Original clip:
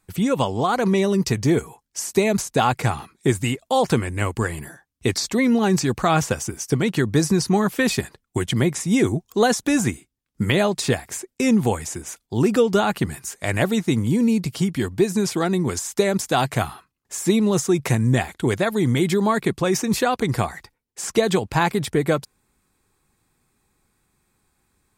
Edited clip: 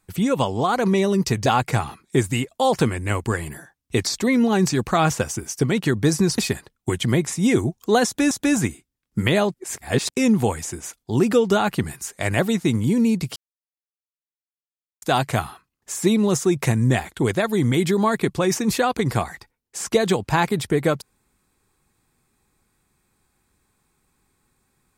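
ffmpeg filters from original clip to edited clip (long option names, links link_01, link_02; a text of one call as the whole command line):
ffmpeg -i in.wav -filter_complex "[0:a]asplit=8[link_01][link_02][link_03][link_04][link_05][link_06][link_07][link_08];[link_01]atrim=end=1.462[link_09];[link_02]atrim=start=2.568:end=7.492[link_10];[link_03]atrim=start=7.858:end=9.792[link_11];[link_04]atrim=start=9.538:end=10.772[link_12];[link_05]atrim=start=10.768:end=11.332,asetpts=PTS-STARTPTS,areverse[link_13];[link_06]atrim=start=11.328:end=14.59,asetpts=PTS-STARTPTS,afade=type=out:start_time=3.258:duration=0.004:curve=hsin[link_14];[link_07]atrim=start=14.59:end=16.25,asetpts=PTS-STARTPTS,volume=0[link_15];[link_08]atrim=start=16.25,asetpts=PTS-STARTPTS,afade=type=in:duration=0.004:curve=hsin[link_16];[link_09][link_10]acrossfade=duration=0.004:curve1=hsin:curve2=hsin[link_17];[link_17][link_11]acrossfade=duration=0.004:curve1=hsin:curve2=hsin[link_18];[link_18][link_12]acrossfade=duration=0.004:curve1=hsin:curve2=hsin[link_19];[link_19][link_13]acrossfade=duration=0.004:curve1=hsin:curve2=hsin[link_20];[link_14][link_15][link_16]concat=n=3:v=0:a=1[link_21];[link_20][link_21]acrossfade=duration=0.004:curve1=hsin:curve2=hsin" out.wav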